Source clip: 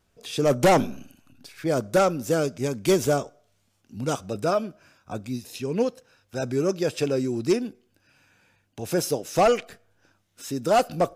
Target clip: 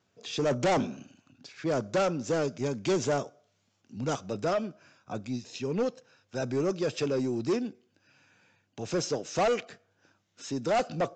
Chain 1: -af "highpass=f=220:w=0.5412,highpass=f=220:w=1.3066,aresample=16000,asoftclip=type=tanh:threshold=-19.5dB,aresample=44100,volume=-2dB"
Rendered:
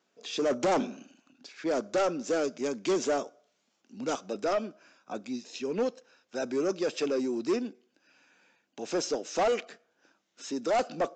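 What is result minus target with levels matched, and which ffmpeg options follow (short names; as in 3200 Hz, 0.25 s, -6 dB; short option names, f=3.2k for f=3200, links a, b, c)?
125 Hz band -12.5 dB
-af "highpass=f=100:w=0.5412,highpass=f=100:w=1.3066,aresample=16000,asoftclip=type=tanh:threshold=-19.5dB,aresample=44100,volume=-2dB"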